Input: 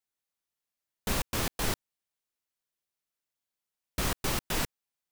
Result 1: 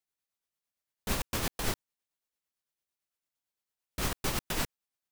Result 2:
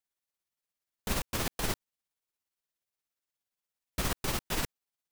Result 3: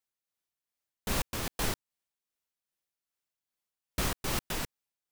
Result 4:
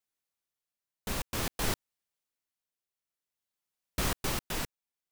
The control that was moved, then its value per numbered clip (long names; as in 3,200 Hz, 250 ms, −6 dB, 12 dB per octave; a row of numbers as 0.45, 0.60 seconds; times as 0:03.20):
amplitude tremolo, speed: 8.9, 17, 2.5, 0.52 Hertz